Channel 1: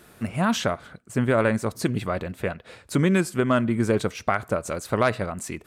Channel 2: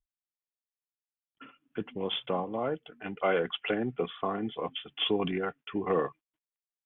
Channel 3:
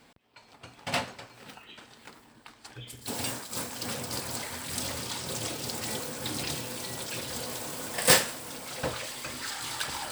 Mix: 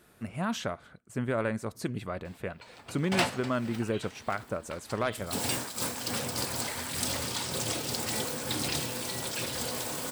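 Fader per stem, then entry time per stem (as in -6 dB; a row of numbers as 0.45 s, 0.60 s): -9.0 dB, mute, +2.0 dB; 0.00 s, mute, 2.25 s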